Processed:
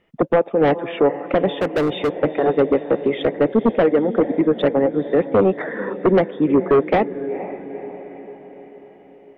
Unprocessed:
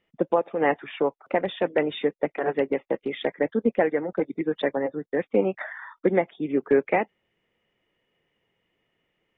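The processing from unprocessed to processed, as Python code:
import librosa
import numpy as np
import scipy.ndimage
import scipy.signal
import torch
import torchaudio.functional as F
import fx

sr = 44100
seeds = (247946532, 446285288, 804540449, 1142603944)

p1 = fx.dynamic_eq(x, sr, hz=1600.0, q=0.71, threshold_db=-38.0, ratio=4.0, max_db=-6)
p2 = fx.echo_diffused(p1, sr, ms=472, feedback_pct=54, wet_db=-15.5)
p3 = fx.fold_sine(p2, sr, drive_db=10, ceiling_db=-8.0)
p4 = p2 + (p3 * librosa.db_to_amplitude(-3.0))
p5 = fx.high_shelf(p4, sr, hz=2300.0, db=-9.0)
p6 = fx.clip_hard(p5, sr, threshold_db=-14.5, at=(1.54, 2.19))
y = p6 * librosa.db_to_amplitude(-1.0)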